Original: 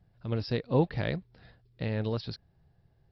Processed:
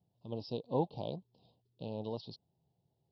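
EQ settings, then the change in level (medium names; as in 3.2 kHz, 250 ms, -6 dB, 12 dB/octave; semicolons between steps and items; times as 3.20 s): high-pass 150 Hz 12 dB/octave; elliptic band-stop 970–3000 Hz, stop band 60 dB; dynamic bell 770 Hz, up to +6 dB, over -45 dBFS, Q 1.4; -7.5 dB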